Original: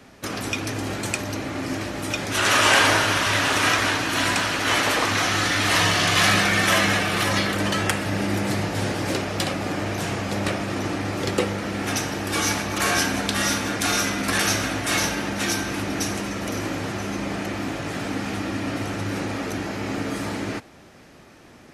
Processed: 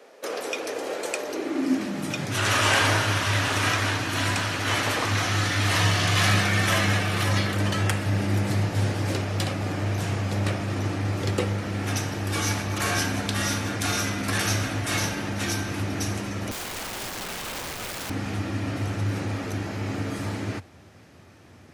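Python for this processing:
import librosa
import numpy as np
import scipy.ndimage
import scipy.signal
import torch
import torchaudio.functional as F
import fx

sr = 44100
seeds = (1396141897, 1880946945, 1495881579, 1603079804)

y = fx.filter_sweep_highpass(x, sr, from_hz=480.0, to_hz=89.0, start_s=1.21, end_s=2.57, q=4.3)
y = fx.overflow_wrap(y, sr, gain_db=24.5, at=(16.51, 18.1))
y = F.gain(torch.from_numpy(y), -4.5).numpy()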